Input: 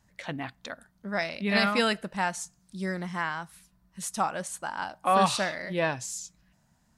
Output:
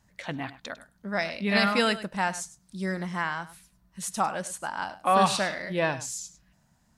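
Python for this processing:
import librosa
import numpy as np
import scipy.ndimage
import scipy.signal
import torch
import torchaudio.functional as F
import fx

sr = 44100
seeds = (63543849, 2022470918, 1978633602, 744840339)

y = x + 10.0 ** (-15.5 / 20.0) * np.pad(x, (int(101 * sr / 1000.0), 0))[:len(x)]
y = y * 10.0 ** (1.0 / 20.0)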